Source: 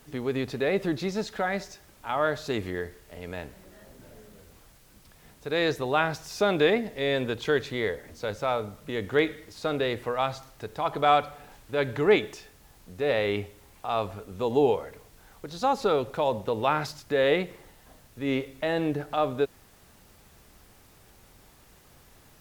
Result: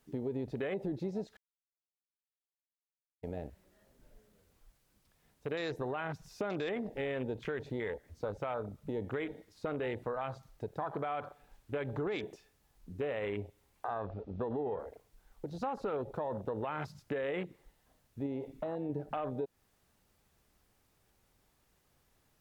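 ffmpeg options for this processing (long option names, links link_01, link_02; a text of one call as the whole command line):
ffmpeg -i in.wav -filter_complex "[0:a]asettb=1/sr,asplit=3[link_01][link_02][link_03];[link_01]atrim=end=13.984[link_04];[link_02]atrim=start=13.98:end=14.79,asetpts=PTS-STARTPTS,afade=type=in:duration=0.004:curve=qsin,afade=type=out:start_time=0.806:duration=0.004:curve=qsin,lowpass=frequency=4700:width=0.5412,lowpass=frequency=4700:width=1.3066[link_05];[link_03]atrim=start=14.786[link_06];[link_04][link_05]acrossfade=duration=0.004:curve1=hsin:curve2=qsin[link_07];[link_07][link_06]acrossfade=duration=0.004:curve1=qsin:curve2=hsin,asettb=1/sr,asplit=3[link_08][link_09][link_10];[link_08]atrim=end=18.264[link_11];[link_09]atrim=start=18.26:end=18.9,asetpts=PTS-STARTPTS,afade=type=in:duration=0.004:curve=qsin,afade=type=out:start_time=0.636:duration=0.004:curve=qsin,acompressor=threshold=-28dB:ratio=6:attack=3.2:release=140:knee=1:detection=peak[link_12];[link_10]atrim=start=18.896[link_13];[link_11][link_12]acrossfade=duration=0.004:curve1=hsin:curve2=qsin[link_14];[link_14][link_13]acrossfade=duration=0.004:curve1=qsin:curve2=hsin,asplit=3[link_15][link_16][link_17];[link_15]atrim=end=1.37,asetpts=PTS-STARTPTS,afade=type=out:start_time=1.366:duration=0.004:curve=hsin[link_18];[link_16]atrim=start=1.37:end=3.23,asetpts=PTS-STARTPTS,volume=0[link_19];[link_17]atrim=start=3.23,asetpts=PTS-STARTPTS,afade=type=in:duration=0.004:curve=hsin[link_20];[link_18][link_19][link_20]concat=n=3:v=0:a=1,afwtdn=0.02,alimiter=limit=-21dB:level=0:latency=1:release=36,acompressor=threshold=-35dB:ratio=3" out.wav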